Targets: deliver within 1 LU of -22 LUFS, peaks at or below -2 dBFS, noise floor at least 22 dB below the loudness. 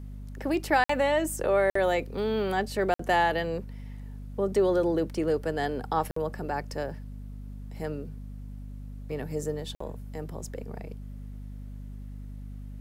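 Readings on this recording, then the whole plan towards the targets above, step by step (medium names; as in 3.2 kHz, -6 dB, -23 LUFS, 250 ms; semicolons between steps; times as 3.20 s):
dropouts 5; longest dropout 54 ms; hum 50 Hz; highest harmonic 250 Hz; hum level -37 dBFS; loudness -28.5 LUFS; peak level -12.0 dBFS; loudness target -22.0 LUFS
-> interpolate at 0.84/1.70/2.94/6.11/9.75 s, 54 ms; de-hum 50 Hz, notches 5; trim +6.5 dB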